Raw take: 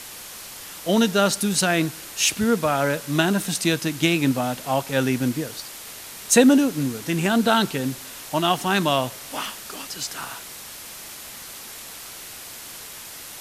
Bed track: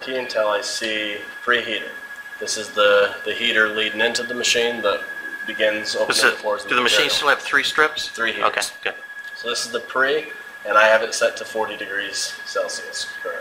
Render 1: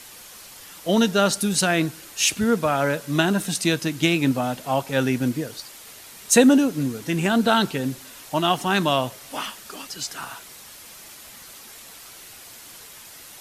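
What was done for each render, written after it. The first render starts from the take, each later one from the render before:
broadband denoise 6 dB, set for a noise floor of −39 dBFS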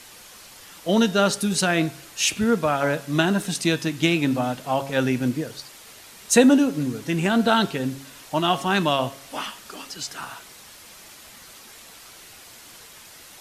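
high-shelf EQ 9,400 Hz −7 dB
hum removal 137.2 Hz, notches 27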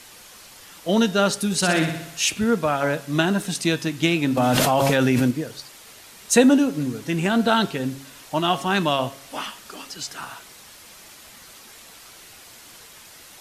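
0:01.56–0:02.19: flutter between parallel walls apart 10.5 metres, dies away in 0.72 s
0:04.37–0:05.31: envelope flattener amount 100%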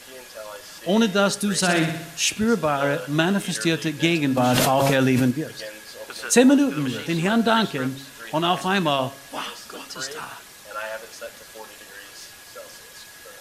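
mix in bed track −18 dB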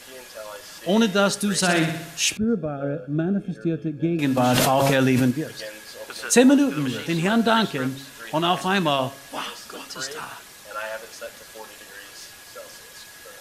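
0:02.37–0:04.19: moving average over 45 samples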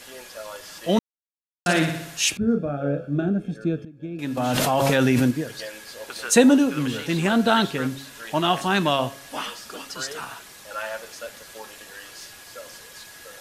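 0:00.99–0:01.66: silence
0:02.38–0:03.29: double-tracking delay 35 ms −6 dB
0:03.85–0:05.01: fade in, from −17.5 dB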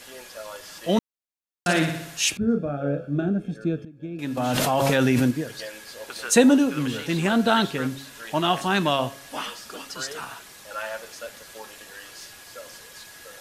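level −1 dB

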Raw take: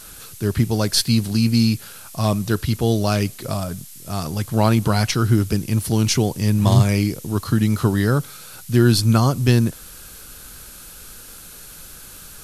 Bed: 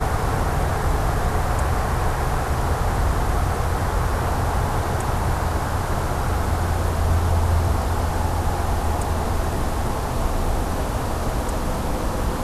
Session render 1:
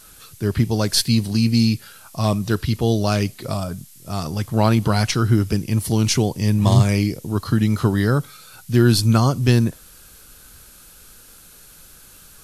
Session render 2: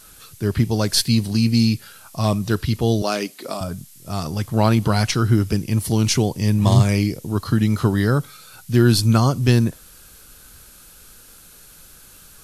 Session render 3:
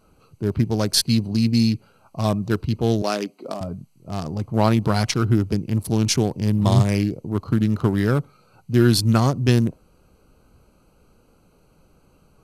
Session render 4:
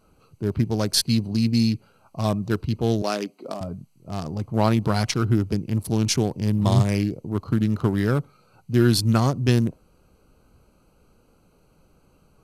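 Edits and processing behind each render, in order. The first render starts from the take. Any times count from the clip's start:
noise reduction from a noise print 6 dB
0:03.02–0:03.61: high-pass filter 240 Hz 24 dB per octave
adaptive Wiener filter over 25 samples; low-shelf EQ 66 Hz −9.5 dB
level −2 dB

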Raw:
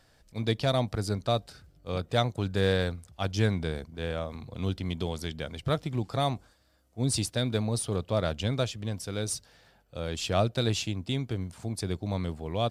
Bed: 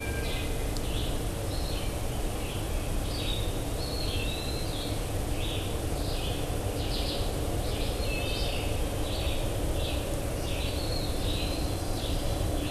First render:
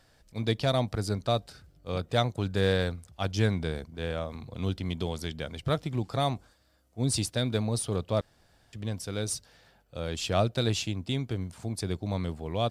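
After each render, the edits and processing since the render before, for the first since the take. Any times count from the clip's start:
0:08.21–0:08.73: fill with room tone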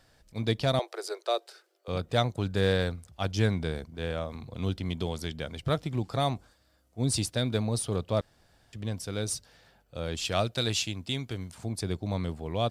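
0:00.79–0:01.88: Chebyshev high-pass filter 340 Hz, order 8
0:10.25–0:11.55: tilt shelving filter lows −4 dB, about 1,200 Hz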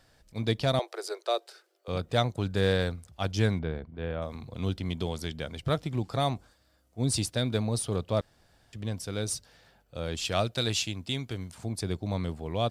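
0:03.59–0:04.22: high-frequency loss of the air 380 metres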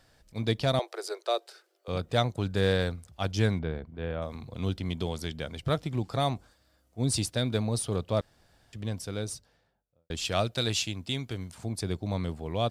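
0:08.92–0:10.10: fade out and dull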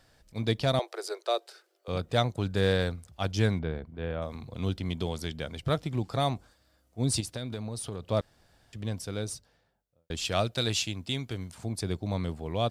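0:07.20–0:08.04: downward compressor 5 to 1, threshold −32 dBFS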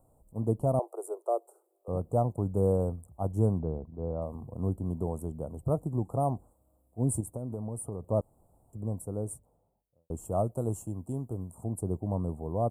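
inverse Chebyshev band-stop filter 1,600–5,100 Hz, stop band 40 dB
parametric band 6,300 Hz −10.5 dB 0.39 octaves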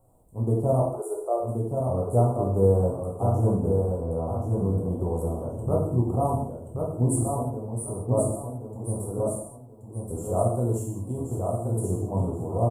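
repeating echo 1,078 ms, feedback 28%, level −4.5 dB
reverb whose tail is shaped and stops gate 240 ms falling, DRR −3.5 dB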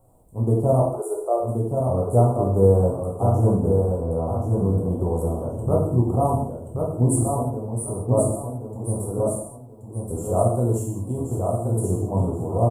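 level +4 dB

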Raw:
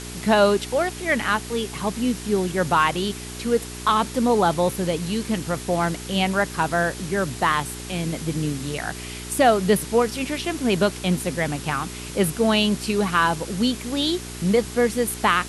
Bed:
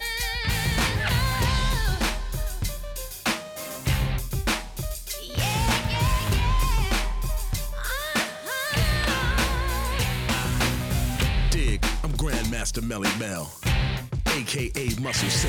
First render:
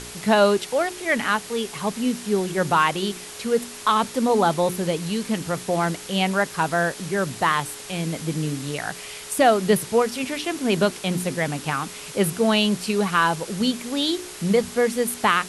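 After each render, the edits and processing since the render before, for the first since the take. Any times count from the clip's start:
hum removal 60 Hz, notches 6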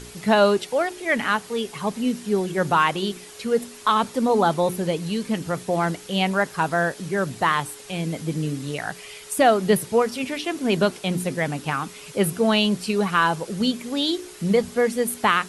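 broadband denoise 7 dB, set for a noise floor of −38 dBFS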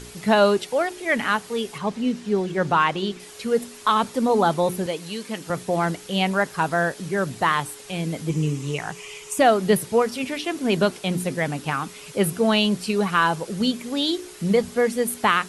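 0:01.78–0:03.20: high-frequency loss of the air 65 metres
0:04.86–0:05.50: high-pass filter 480 Hz 6 dB per octave
0:08.29–0:09.39: EQ curve with evenly spaced ripples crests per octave 0.73, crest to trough 8 dB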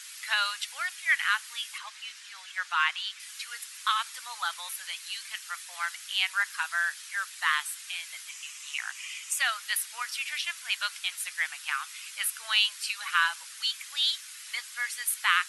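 inverse Chebyshev high-pass filter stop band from 420 Hz, stop band 60 dB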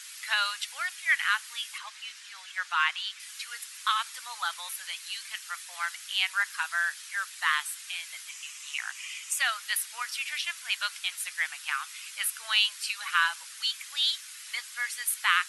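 no processing that can be heard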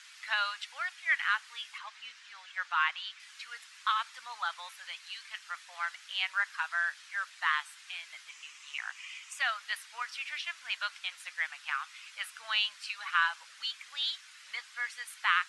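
low-pass filter 6,300 Hz 12 dB per octave
high-shelf EQ 2,400 Hz −9 dB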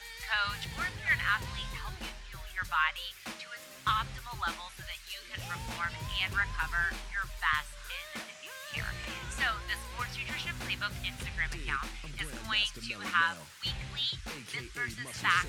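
mix in bed −17.5 dB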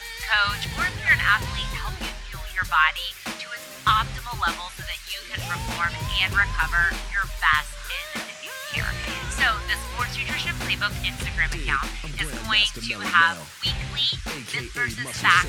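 level +10 dB

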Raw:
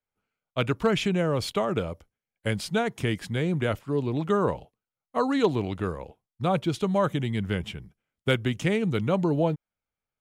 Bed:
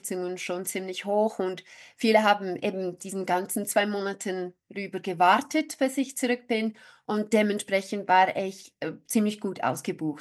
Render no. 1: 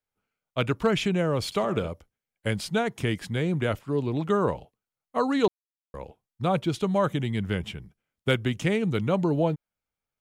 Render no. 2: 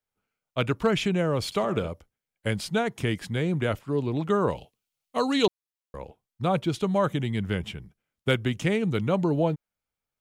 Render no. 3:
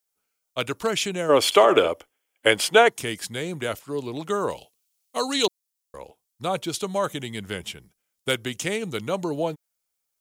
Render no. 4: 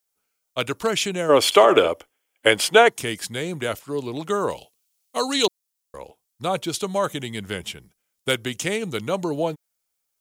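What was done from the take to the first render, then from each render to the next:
0:01.45–0:01.88: flutter between parallel walls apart 11.5 metres, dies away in 0.3 s; 0:05.48–0:05.94: silence
0:04.50–0:05.47: high shelf with overshoot 2,100 Hz +7 dB, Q 1.5
0:01.29–0:02.90: gain on a spectral selection 250–3,500 Hz +12 dB; bass and treble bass −10 dB, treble +13 dB
level +2 dB; brickwall limiter −1 dBFS, peak gain reduction 1 dB

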